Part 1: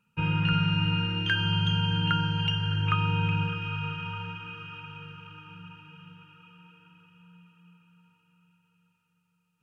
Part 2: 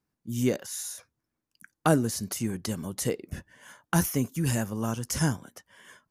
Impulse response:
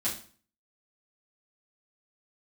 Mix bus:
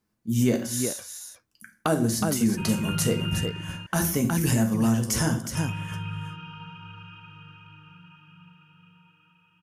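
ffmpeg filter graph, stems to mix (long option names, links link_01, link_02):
-filter_complex "[0:a]bandreject=frequency=460:width=12,adelay=2400,volume=-6dB,asplit=3[link_01][link_02][link_03];[link_01]atrim=end=3.5,asetpts=PTS-STARTPTS,afade=type=out:start_time=3.496:duration=0.004:curve=hsin[link_04];[link_02]atrim=start=3.5:end=5.55,asetpts=PTS-STARTPTS,volume=0[link_05];[link_03]atrim=start=5.55,asetpts=PTS-STARTPTS,afade=type=in:duration=0.004:curve=hsin[link_06];[link_04][link_05][link_06]concat=n=3:v=0:a=1,asplit=2[link_07][link_08];[link_08]volume=-4.5dB[link_09];[1:a]volume=1.5dB,asplit=3[link_10][link_11][link_12];[link_11]volume=-6.5dB[link_13];[link_12]volume=-5.5dB[link_14];[2:a]atrim=start_sample=2205[link_15];[link_13][link_15]afir=irnorm=-1:irlink=0[link_16];[link_09][link_14]amix=inputs=2:normalize=0,aecho=0:1:366:1[link_17];[link_07][link_10][link_16][link_17]amix=inputs=4:normalize=0,alimiter=limit=-12.5dB:level=0:latency=1:release=199"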